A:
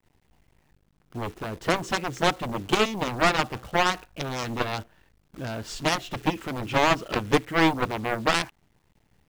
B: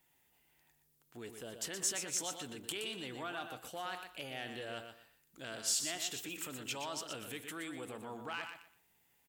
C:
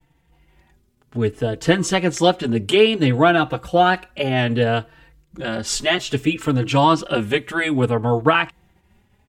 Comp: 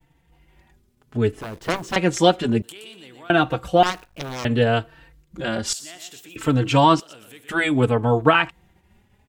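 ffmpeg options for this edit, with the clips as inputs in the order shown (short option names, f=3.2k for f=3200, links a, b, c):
-filter_complex "[0:a]asplit=2[a][b];[1:a]asplit=3[c][d][e];[2:a]asplit=6[f][g][h][i][j][k];[f]atrim=end=1.412[l];[a]atrim=start=1.408:end=1.962[m];[g]atrim=start=1.958:end=2.622[n];[c]atrim=start=2.618:end=3.302[o];[h]atrim=start=3.298:end=3.832[p];[b]atrim=start=3.828:end=4.452[q];[i]atrim=start=4.448:end=5.732[r];[d]atrim=start=5.728:end=6.362[s];[j]atrim=start=6.358:end=7.002[t];[e]atrim=start=6.998:end=7.492[u];[k]atrim=start=7.488[v];[l][m]acrossfade=d=0.004:c1=hsin:c2=hsin[w];[w][n]acrossfade=d=0.004:c1=hsin:c2=hsin[x];[x][o]acrossfade=d=0.004:c1=hsin:c2=hsin[y];[y][p]acrossfade=d=0.004:c1=hsin:c2=hsin[z];[z][q]acrossfade=d=0.004:c1=hsin:c2=hsin[aa];[aa][r]acrossfade=d=0.004:c1=hsin:c2=hsin[ab];[ab][s]acrossfade=d=0.004:c1=hsin:c2=hsin[ac];[ac][t]acrossfade=d=0.004:c1=hsin:c2=hsin[ad];[ad][u]acrossfade=d=0.004:c1=hsin:c2=hsin[ae];[ae][v]acrossfade=d=0.004:c1=hsin:c2=hsin"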